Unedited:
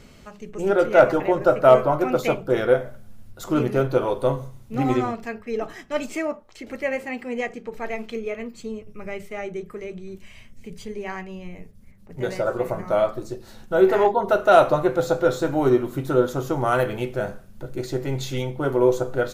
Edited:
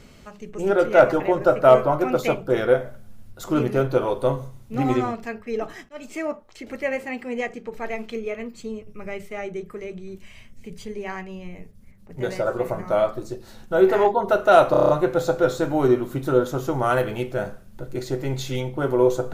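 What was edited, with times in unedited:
0:05.89–0:06.31: fade in, from −23.5 dB
0:14.71: stutter 0.03 s, 7 plays

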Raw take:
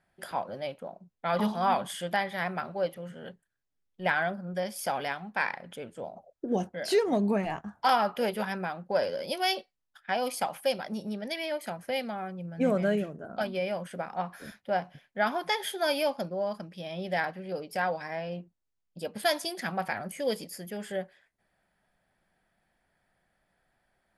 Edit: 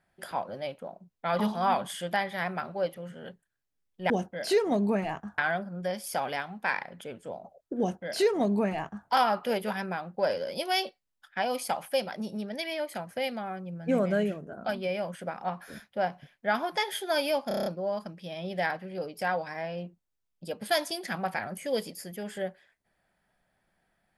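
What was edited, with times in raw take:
0:06.51–0:07.79: duplicate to 0:04.10
0:16.20: stutter 0.03 s, 7 plays

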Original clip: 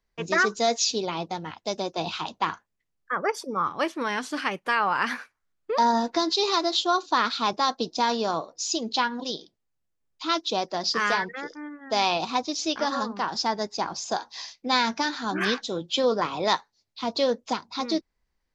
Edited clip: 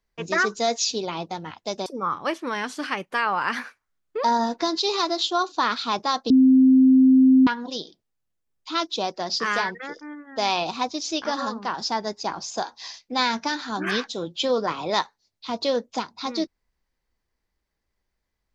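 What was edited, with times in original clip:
0:01.86–0:03.40: remove
0:07.84–0:09.01: beep over 261 Hz −11 dBFS

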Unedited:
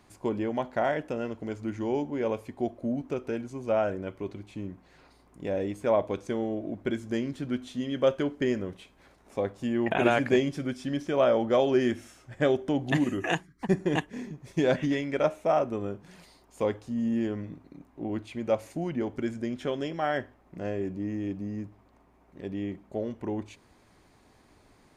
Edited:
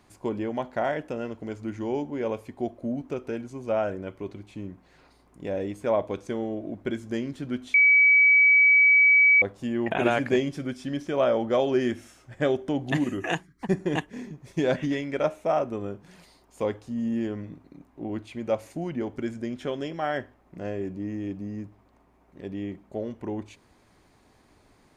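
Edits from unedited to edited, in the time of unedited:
0:07.74–0:09.42: beep over 2,280 Hz −14 dBFS

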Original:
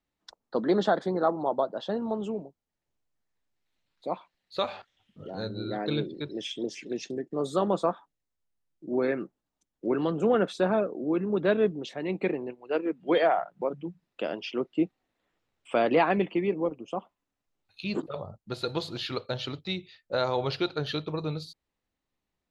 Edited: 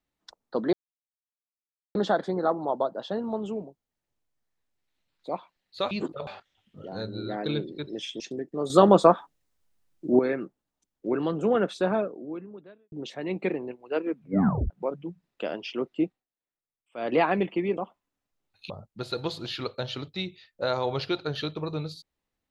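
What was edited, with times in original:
0:00.73: splice in silence 1.22 s
0:06.62–0:06.99: remove
0:07.49–0:08.98: clip gain +9.5 dB
0:10.73–0:11.71: fade out quadratic
0:12.94: tape stop 0.55 s
0:14.81–0:15.96: duck −22 dB, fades 0.23 s
0:16.56–0:16.92: remove
0:17.85–0:18.21: move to 0:04.69

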